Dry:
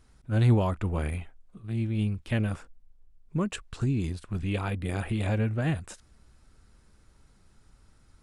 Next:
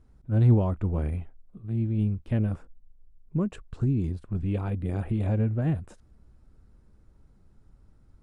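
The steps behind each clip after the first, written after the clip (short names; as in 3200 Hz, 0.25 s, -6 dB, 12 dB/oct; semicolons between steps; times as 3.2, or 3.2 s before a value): tilt shelf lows +8.5 dB, about 1100 Hz; gain -6 dB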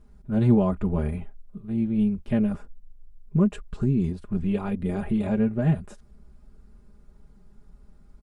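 comb 4.9 ms, depth 83%; gain +2.5 dB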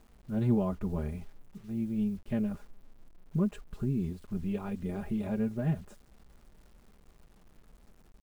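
bit-crush 9-bit; gain -8 dB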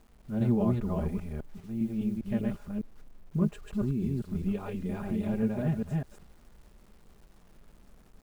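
reverse delay 0.201 s, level -1.5 dB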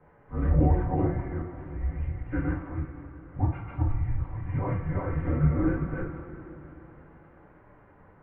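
two-slope reverb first 0.37 s, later 3.9 s, from -18 dB, DRR -9.5 dB; mistuned SSB -290 Hz 320–2200 Hz; gain +2 dB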